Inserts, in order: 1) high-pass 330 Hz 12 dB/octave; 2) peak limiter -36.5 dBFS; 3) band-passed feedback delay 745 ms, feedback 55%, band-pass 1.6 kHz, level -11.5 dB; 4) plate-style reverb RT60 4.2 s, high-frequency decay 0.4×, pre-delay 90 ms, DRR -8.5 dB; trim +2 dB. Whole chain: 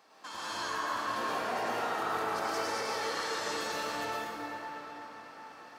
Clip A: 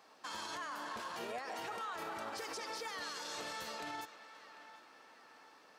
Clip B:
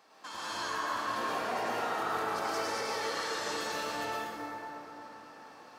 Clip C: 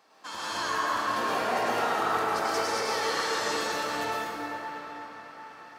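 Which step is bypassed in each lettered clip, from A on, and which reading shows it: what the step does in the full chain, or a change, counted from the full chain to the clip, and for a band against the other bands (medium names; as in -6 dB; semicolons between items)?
4, crest factor change -2.5 dB; 3, momentary loudness spread change +2 LU; 2, mean gain reduction 3.0 dB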